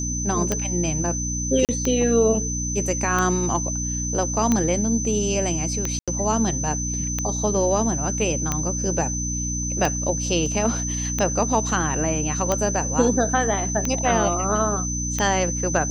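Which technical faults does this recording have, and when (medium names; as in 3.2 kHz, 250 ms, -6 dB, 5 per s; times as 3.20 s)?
hum 60 Hz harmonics 5 -28 dBFS
tick 45 rpm -8 dBFS
whine 6.1 kHz -27 dBFS
1.65–1.69 s: dropout 38 ms
5.99–6.08 s: dropout 86 ms
10.46 s: dropout 2.2 ms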